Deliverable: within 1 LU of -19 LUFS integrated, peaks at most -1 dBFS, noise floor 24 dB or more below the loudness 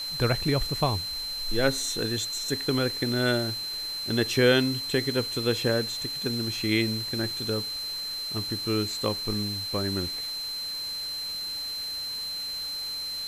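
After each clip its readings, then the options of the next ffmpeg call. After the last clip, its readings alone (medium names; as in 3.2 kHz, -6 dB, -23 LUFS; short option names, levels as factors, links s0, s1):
steady tone 4.1 kHz; tone level -31 dBFS; noise floor -34 dBFS; noise floor target -52 dBFS; loudness -27.5 LUFS; peak level -8.0 dBFS; loudness target -19.0 LUFS
-> -af "bandreject=f=4100:w=30"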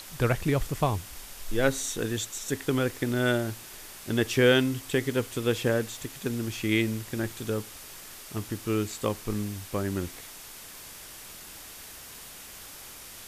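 steady tone not found; noise floor -45 dBFS; noise floor target -53 dBFS
-> -af "afftdn=nr=8:nf=-45"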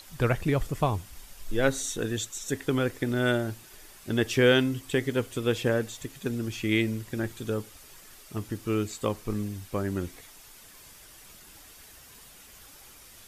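noise floor -51 dBFS; noise floor target -53 dBFS
-> -af "afftdn=nr=6:nf=-51"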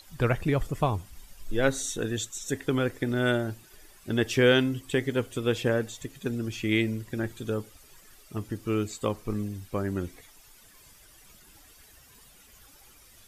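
noise floor -55 dBFS; loudness -29.0 LUFS; peak level -9.0 dBFS; loudness target -19.0 LUFS
-> -af "volume=3.16,alimiter=limit=0.891:level=0:latency=1"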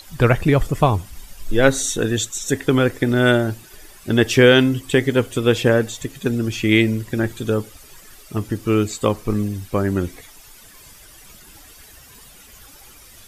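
loudness -19.0 LUFS; peak level -1.0 dBFS; noise floor -45 dBFS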